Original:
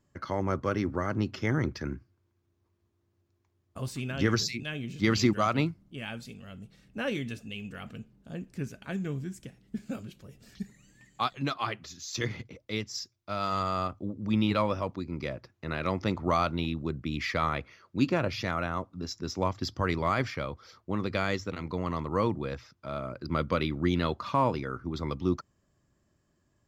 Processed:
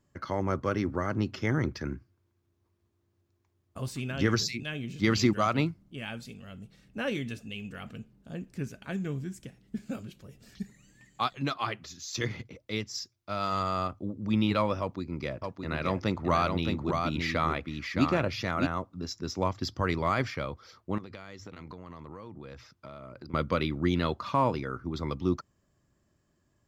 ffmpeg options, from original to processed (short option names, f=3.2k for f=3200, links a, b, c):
-filter_complex "[0:a]asettb=1/sr,asplit=3[a][b][c];[a]atrim=end=14.804[d];[b]atrim=start=14.8:end=18.67,asetpts=PTS-STARTPTS,afade=t=in:d=0.004:c=qsin,afade=t=out:st=3.866:d=0.004:c=qsin,aecho=1:1:617:0.596,atrim=end_sample=170667[e];[c]atrim=start=18.666[f];[d][e]acrossfade=d=0.004:c1=hsin:c2=qsin[g];[g][f]acrossfade=d=0.004:c1=qsin:c2=hsin,asettb=1/sr,asplit=3[h][i][j];[h]atrim=end=20.984[k];[i]atrim=start=20.98:end=23.34,asetpts=PTS-STARTPTS,afade=t=in:d=0.004:c=qsin,afade=t=out:st=2.356:d=0.004:c=qsin,acompressor=threshold=-39dB:ratio=20:attack=3.2:release=140:knee=1:detection=peak[l];[j]atrim=start=23.336[m];[k][l]acrossfade=d=0.004:c1=hsin:c2=qsin[n];[n][m]acrossfade=d=0.004:c1=qsin:c2=hsin"